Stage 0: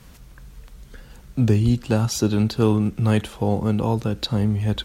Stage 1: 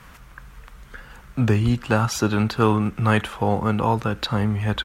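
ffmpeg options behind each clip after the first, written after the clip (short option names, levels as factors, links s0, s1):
-af "firequalizer=gain_entry='entry(340,0);entry(1200,13);entry(4100,0)':delay=0.05:min_phase=1,volume=0.841"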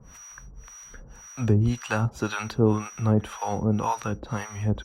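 -filter_complex "[0:a]aeval=exprs='val(0)+0.00794*sin(2*PI*5800*n/s)':c=same,acrossover=split=690[s0][s1];[s0]aeval=exprs='val(0)*(1-1/2+1/2*cos(2*PI*1.9*n/s))':c=same[s2];[s1]aeval=exprs='val(0)*(1-1/2-1/2*cos(2*PI*1.9*n/s))':c=same[s3];[s2][s3]amix=inputs=2:normalize=0"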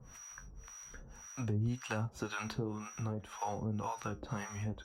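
-af "acompressor=threshold=0.0398:ratio=6,flanger=delay=7.6:depth=7.7:regen=62:speed=0.56:shape=triangular,volume=0.841"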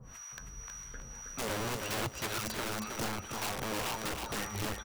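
-af "aeval=exprs='(mod(53.1*val(0)+1,2)-1)/53.1':c=same,aecho=1:1:319|638|957:0.562|0.146|0.038,volume=1.58"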